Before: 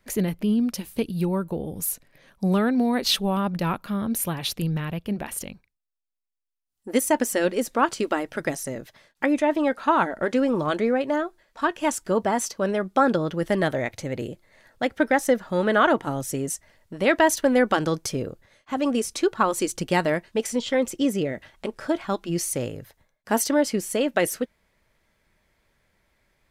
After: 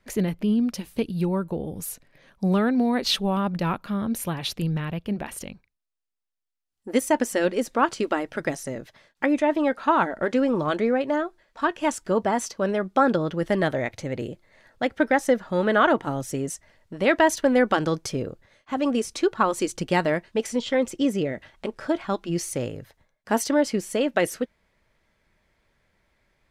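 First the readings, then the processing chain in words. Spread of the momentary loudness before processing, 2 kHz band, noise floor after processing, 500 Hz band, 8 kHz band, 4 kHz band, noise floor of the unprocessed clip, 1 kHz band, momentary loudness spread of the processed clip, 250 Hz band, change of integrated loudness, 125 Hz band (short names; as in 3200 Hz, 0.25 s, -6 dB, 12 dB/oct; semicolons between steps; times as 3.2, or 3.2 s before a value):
11 LU, -0.5 dB, -77 dBFS, 0.0 dB, -4.5 dB, -1.0 dB, -75 dBFS, 0.0 dB, 12 LU, 0.0 dB, 0.0 dB, 0.0 dB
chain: high shelf 10000 Hz -12 dB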